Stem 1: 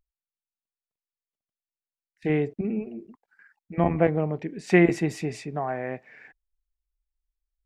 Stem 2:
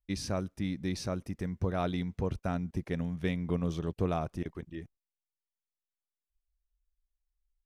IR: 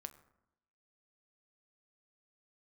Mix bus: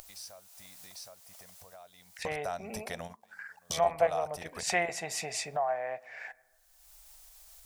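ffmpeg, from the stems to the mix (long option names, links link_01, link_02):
-filter_complex "[0:a]highshelf=frequency=4500:gain=-5,volume=-1.5dB,afade=type=out:start_time=1.19:duration=0.78:silence=0.421697,asplit=3[link_01][link_02][link_03];[link_02]volume=-4.5dB[link_04];[1:a]alimiter=level_in=3.5dB:limit=-24dB:level=0:latency=1:release=236,volume=-3.5dB,bandreject=frequency=6600:width=12,volume=0dB[link_05];[link_03]apad=whole_len=337433[link_06];[link_05][link_06]sidechaingate=range=-44dB:threshold=-53dB:ratio=16:detection=peak[link_07];[2:a]atrim=start_sample=2205[link_08];[link_04][link_08]afir=irnorm=-1:irlink=0[link_09];[link_01][link_07][link_09]amix=inputs=3:normalize=0,lowshelf=frequency=460:width_type=q:width=3:gain=-12.5,acompressor=mode=upward:threshold=-30dB:ratio=2.5,bass=frequency=250:gain=-2,treble=frequency=4000:gain=14"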